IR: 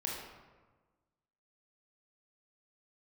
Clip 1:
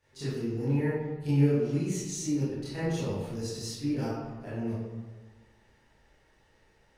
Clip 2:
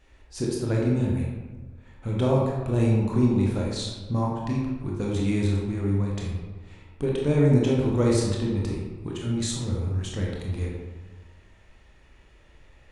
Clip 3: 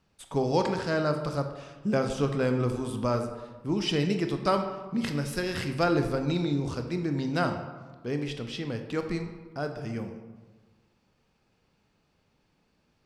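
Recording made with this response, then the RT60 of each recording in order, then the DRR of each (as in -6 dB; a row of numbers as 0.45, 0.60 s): 2; 1.3, 1.3, 1.3 s; -13.0, -3.0, 5.5 dB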